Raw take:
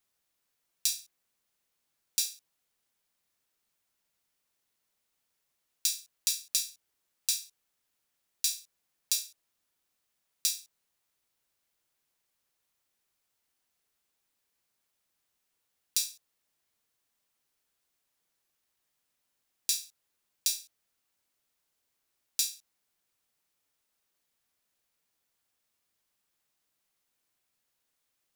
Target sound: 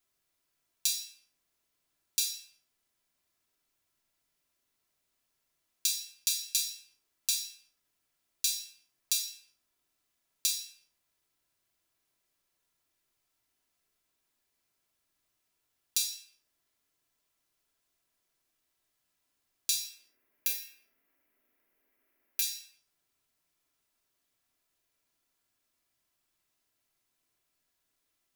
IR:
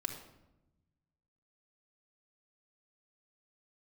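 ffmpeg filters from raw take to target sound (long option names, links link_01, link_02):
-filter_complex "[0:a]asettb=1/sr,asplit=3[link_01][link_02][link_03];[link_01]atrim=end=19.804[link_04];[link_02]atrim=start=19.8:end=22.42,asetpts=PTS-STARTPTS,afade=type=in:duration=0.004:curve=qsin,afade=type=out:start_time=2.616:duration=0.004:curve=qsin,equalizer=frequency=125:width_type=o:width=1:gain=-7,equalizer=frequency=250:width_type=o:width=1:gain=9,equalizer=frequency=500:width_type=o:width=1:gain=8,equalizer=frequency=2000:width_type=o:width=1:gain=10,equalizer=frequency=4000:width_type=o:width=1:gain=-8,equalizer=frequency=8000:width_type=o:width=1:gain=-11,equalizer=frequency=16000:width_type=o:width=1:gain=8[link_05];[link_03]atrim=start=22.416[link_06];[link_04][link_05]acrossfade=duration=0.004:curve1=hsin:curve2=qsin[link_07];[link_07][link_06]acrossfade=duration=0.004:curve1=qsin:curve2=hsin[link_08];[1:a]atrim=start_sample=2205,afade=type=out:start_time=0.42:duration=0.01,atrim=end_sample=18963[link_09];[link_08][link_09]afir=irnorm=-1:irlink=0"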